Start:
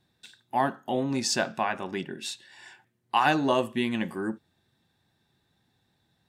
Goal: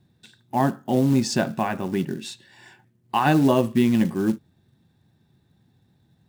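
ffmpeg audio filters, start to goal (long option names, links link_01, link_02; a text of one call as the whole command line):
ffmpeg -i in.wav -af "equalizer=frequency=130:width=0.34:gain=14.5,acrusher=bits=6:mode=log:mix=0:aa=0.000001,volume=-1.5dB" out.wav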